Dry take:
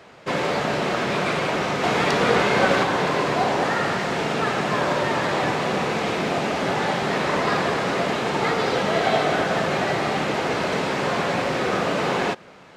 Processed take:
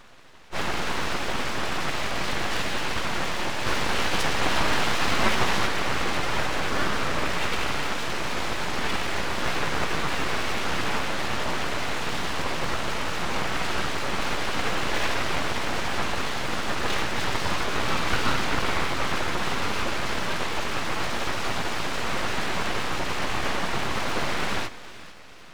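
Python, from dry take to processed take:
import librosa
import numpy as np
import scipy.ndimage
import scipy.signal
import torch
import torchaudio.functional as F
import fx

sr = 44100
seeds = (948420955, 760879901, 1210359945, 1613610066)

y = fx.stretch_vocoder_free(x, sr, factor=2.0)
y = fx.echo_split(y, sr, split_hz=610.0, low_ms=97, high_ms=447, feedback_pct=52, wet_db=-15.5)
y = np.abs(y)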